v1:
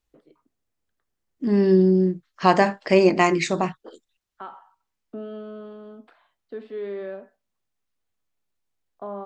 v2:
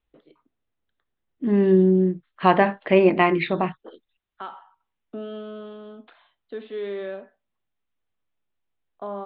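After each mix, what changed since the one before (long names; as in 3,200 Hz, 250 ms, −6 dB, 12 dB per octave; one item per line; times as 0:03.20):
first voice: remove high-frequency loss of the air 430 metres
master: add Butterworth low-pass 3,800 Hz 72 dB per octave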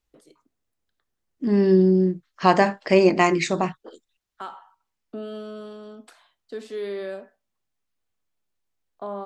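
master: remove Butterworth low-pass 3,800 Hz 72 dB per octave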